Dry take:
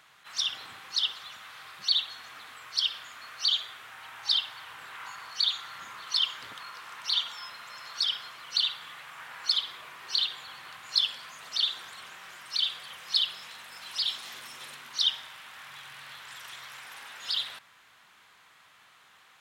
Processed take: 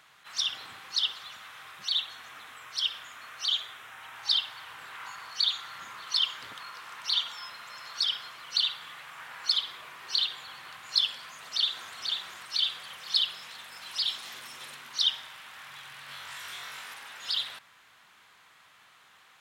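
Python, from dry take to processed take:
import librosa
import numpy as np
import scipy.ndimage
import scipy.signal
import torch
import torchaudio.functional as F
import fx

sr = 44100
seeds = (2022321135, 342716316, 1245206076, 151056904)

y = fx.peak_eq(x, sr, hz=4500.0, db=-8.0, octaves=0.24, at=(1.48, 4.14))
y = fx.echo_throw(y, sr, start_s=11.25, length_s=0.71, ms=490, feedback_pct=45, wet_db=-4.5)
y = fx.room_flutter(y, sr, wall_m=3.6, rt60_s=0.43, at=(16.06, 16.94))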